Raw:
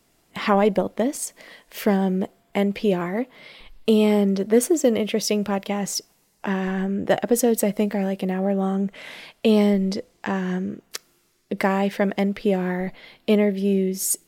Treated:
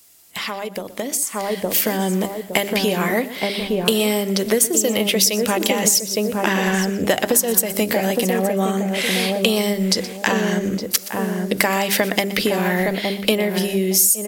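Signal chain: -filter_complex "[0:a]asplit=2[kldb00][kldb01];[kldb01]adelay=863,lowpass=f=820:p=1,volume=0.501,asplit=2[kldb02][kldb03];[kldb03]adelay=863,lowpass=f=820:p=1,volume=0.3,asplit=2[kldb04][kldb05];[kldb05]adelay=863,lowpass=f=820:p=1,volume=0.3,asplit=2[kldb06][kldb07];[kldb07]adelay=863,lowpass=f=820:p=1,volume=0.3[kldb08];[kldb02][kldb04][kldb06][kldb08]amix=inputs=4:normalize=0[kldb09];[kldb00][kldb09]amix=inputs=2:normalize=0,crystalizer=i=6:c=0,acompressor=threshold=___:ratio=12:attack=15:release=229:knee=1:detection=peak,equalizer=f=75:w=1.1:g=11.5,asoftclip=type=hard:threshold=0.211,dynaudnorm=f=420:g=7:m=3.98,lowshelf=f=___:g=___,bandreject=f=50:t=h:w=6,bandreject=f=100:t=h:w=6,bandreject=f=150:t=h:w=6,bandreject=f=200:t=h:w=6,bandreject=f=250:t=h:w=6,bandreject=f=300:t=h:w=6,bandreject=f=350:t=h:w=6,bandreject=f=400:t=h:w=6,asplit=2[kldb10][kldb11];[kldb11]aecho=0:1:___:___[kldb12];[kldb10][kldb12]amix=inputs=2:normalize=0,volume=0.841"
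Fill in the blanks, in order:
0.0708, 150, -11.5, 122, 0.158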